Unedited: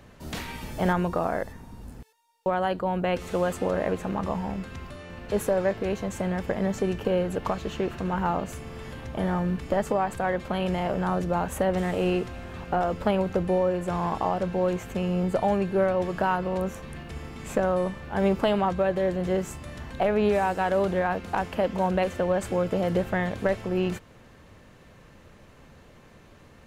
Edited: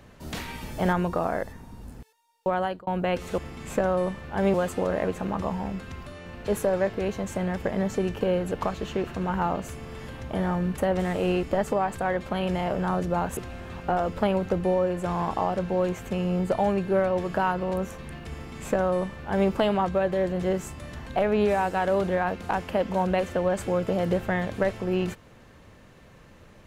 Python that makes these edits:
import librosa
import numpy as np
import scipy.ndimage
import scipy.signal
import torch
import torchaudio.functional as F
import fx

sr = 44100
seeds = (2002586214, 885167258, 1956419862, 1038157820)

y = fx.edit(x, sr, fx.fade_out_span(start_s=2.61, length_s=0.26),
    fx.move(start_s=11.56, length_s=0.65, to_s=9.62),
    fx.duplicate(start_s=17.17, length_s=1.16, to_s=3.38), tone=tone)